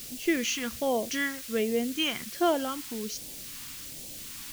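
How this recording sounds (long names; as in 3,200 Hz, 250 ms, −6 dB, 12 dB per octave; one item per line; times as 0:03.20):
a quantiser's noise floor 8 bits, dither triangular
phaser sweep stages 2, 1.3 Hz, lowest notch 550–1,200 Hz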